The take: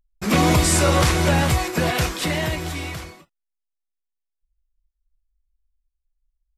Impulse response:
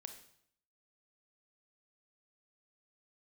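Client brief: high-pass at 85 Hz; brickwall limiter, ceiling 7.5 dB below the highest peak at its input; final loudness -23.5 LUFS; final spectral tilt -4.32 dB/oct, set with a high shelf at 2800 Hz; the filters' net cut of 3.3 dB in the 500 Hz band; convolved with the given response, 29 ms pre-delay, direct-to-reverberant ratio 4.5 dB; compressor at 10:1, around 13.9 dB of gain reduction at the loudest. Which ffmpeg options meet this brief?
-filter_complex "[0:a]highpass=85,equalizer=f=500:t=o:g=-4,highshelf=f=2.8k:g=-4.5,acompressor=threshold=-29dB:ratio=10,alimiter=level_in=2.5dB:limit=-24dB:level=0:latency=1,volume=-2.5dB,asplit=2[a][b];[1:a]atrim=start_sample=2205,adelay=29[c];[b][c]afir=irnorm=-1:irlink=0,volume=0.5dB[d];[a][d]amix=inputs=2:normalize=0,volume=11dB"

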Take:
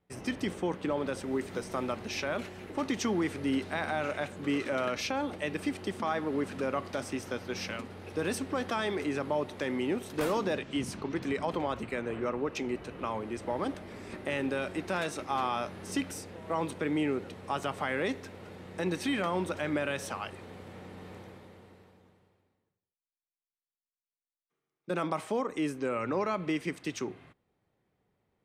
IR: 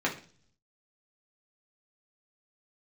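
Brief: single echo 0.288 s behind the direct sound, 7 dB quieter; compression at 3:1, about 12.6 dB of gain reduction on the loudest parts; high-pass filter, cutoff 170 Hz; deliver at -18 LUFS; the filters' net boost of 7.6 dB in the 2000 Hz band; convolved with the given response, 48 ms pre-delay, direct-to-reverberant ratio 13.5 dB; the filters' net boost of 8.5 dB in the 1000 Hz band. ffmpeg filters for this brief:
-filter_complex "[0:a]highpass=170,equalizer=f=1k:t=o:g=9,equalizer=f=2k:t=o:g=6.5,acompressor=threshold=-37dB:ratio=3,aecho=1:1:288:0.447,asplit=2[a][b];[1:a]atrim=start_sample=2205,adelay=48[c];[b][c]afir=irnorm=-1:irlink=0,volume=-23dB[d];[a][d]amix=inputs=2:normalize=0,volume=19.5dB"

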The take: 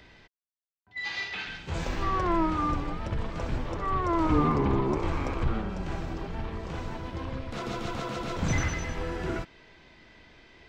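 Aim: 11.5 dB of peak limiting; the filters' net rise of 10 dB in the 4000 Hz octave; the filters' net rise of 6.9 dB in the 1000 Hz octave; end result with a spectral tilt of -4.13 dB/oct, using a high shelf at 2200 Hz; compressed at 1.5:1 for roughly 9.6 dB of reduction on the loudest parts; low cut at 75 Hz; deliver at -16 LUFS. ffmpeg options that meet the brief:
-af "highpass=75,equalizer=f=1k:t=o:g=6.5,highshelf=f=2.2k:g=5,equalizer=f=4k:t=o:g=7.5,acompressor=threshold=-46dB:ratio=1.5,volume=24.5dB,alimiter=limit=-7.5dB:level=0:latency=1"

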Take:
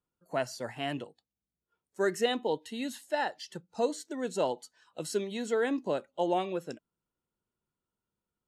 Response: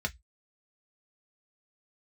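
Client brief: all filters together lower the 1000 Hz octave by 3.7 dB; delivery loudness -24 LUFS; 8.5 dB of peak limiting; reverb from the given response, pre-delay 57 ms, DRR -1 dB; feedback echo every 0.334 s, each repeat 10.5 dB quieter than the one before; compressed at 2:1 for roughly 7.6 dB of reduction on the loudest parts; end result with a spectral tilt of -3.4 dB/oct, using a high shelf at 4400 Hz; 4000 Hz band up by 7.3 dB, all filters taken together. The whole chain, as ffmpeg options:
-filter_complex "[0:a]equalizer=f=1k:t=o:g=-6,equalizer=f=4k:t=o:g=7.5,highshelf=f=4.4k:g=4.5,acompressor=threshold=-37dB:ratio=2,alimiter=level_in=6dB:limit=-24dB:level=0:latency=1,volume=-6dB,aecho=1:1:334|668|1002:0.299|0.0896|0.0269,asplit=2[a][b];[1:a]atrim=start_sample=2205,adelay=57[c];[b][c]afir=irnorm=-1:irlink=0,volume=-4dB[d];[a][d]amix=inputs=2:normalize=0,volume=13.5dB"

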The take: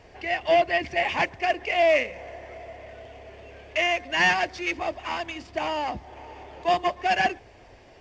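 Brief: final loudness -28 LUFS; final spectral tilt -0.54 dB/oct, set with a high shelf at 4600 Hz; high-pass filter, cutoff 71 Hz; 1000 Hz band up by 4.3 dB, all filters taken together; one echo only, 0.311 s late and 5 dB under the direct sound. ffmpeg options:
-af "highpass=71,equalizer=f=1k:t=o:g=7,highshelf=f=4.6k:g=-4,aecho=1:1:311:0.562,volume=-6.5dB"

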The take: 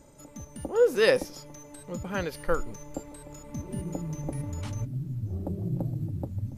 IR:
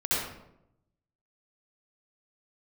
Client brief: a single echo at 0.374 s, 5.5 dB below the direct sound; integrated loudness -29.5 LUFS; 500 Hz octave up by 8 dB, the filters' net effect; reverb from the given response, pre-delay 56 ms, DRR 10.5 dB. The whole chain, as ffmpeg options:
-filter_complex "[0:a]equalizer=f=500:t=o:g=8.5,aecho=1:1:374:0.531,asplit=2[a][b];[1:a]atrim=start_sample=2205,adelay=56[c];[b][c]afir=irnorm=-1:irlink=0,volume=-20.5dB[d];[a][d]amix=inputs=2:normalize=0,volume=-7dB"

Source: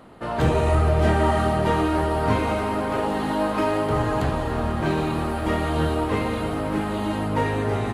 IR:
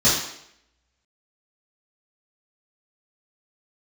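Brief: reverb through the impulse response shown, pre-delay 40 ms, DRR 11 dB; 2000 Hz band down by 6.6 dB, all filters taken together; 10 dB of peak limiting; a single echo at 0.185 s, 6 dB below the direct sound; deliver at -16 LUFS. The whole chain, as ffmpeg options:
-filter_complex "[0:a]equalizer=f=2k:t=o:g=-8.5,alimiter=limit=-18dB:level=0:latency=1,aecho=1:1:185:0.501,asplit=2[a][b];[1:a]atrim=start_sample=2205,adelay=40[c];[b][c]afir=irnorm=-1:irlink=0,volume=-29.5dB[d];[a][d]amix=inputs=2:normalize=0,volume=10dB"

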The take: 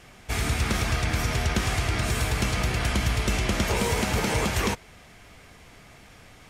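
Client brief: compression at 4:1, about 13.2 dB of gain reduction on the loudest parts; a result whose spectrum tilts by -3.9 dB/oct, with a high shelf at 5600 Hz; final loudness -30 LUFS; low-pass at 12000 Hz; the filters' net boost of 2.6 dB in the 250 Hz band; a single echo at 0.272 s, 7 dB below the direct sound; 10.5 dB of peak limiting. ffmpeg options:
-af "lowpass=12k,equalizer=f=250:t=o:g=3.5,highshelf=f=5.6k:g=4,acompressor=threshold=-36dB:ratio=4,alimiter=level_in=9.5dB:limit=-24dB:level=0:latency=1,volume=-9.5dB,aecho=1:1:272:0.447,volume=12.5dB"

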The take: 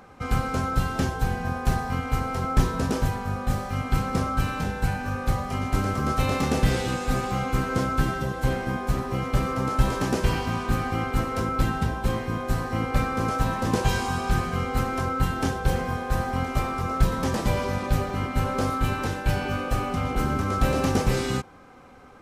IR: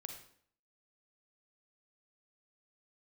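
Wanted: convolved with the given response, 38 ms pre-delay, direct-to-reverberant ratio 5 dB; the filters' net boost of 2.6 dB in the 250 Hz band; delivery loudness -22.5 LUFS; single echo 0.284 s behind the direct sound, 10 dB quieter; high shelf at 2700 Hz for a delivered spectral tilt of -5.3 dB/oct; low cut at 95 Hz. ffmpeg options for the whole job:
-filter_complex "[0:a]highpass=95,equalizer=f=250:t=o:g=3.5,highshelf=f=2.7k:g=-8.5,aecho=1:1:284:0.316,asplit=2[a][b];[1:a]atrim=start_sample=2205,adelay=38[c];[b][c]afir=irnorm=-1:irlink=0,volume=-1dB[d];[a][d]amix=inputs=2:normalize=0,volume=2.5dB"

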